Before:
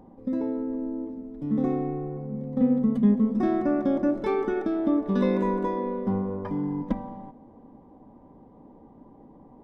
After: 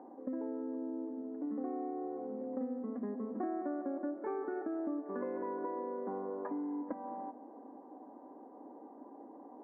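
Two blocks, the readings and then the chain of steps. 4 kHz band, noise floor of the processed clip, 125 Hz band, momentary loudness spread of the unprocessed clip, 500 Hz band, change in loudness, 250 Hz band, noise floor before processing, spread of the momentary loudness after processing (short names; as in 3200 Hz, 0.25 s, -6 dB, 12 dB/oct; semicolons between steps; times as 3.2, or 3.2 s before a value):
n/a, -54 dBFS, under -25 dB, 11 LU, -10.5 dB, -13.0 dB, -14.0 dB, -52 dBFS, 15 LU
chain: elliptic band-pass 280–1700 Hz, stop band 40 dB; compressor 5:1, threshold -38 dBFS, peak gain reduction 16 dB; bell 720 Hz +4.5 dB 0.21 oct; gain +1 dB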